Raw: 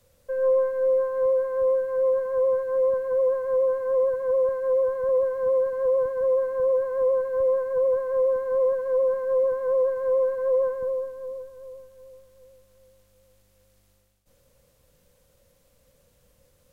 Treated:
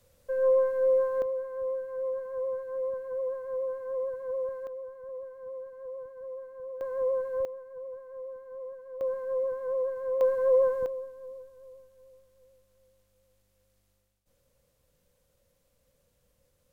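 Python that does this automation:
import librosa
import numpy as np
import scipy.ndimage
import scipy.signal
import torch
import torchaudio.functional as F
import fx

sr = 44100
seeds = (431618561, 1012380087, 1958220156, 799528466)

y = fx.gain(x, sr, db=fx.steps((0.0, -2.0), (1.22, -10.0), (4.67, -18.0), (6.81, -6.0), (7.45, -18.5), (9.01, -7.5), (10.21, 0.0), (10.86, -8.5)))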